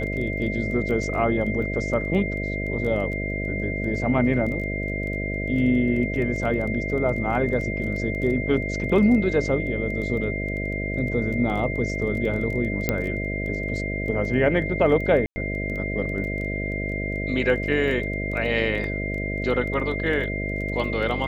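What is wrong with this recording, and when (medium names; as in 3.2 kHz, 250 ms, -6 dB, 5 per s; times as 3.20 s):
buzz 50 Hz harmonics 13 -29 dBFS
crackle 13 per s -31 dBFS
whine 2.1 kHz -30 dBFS
12.89 s: pop -7 dBFS
15.26–15.36 s: dropout 100 ms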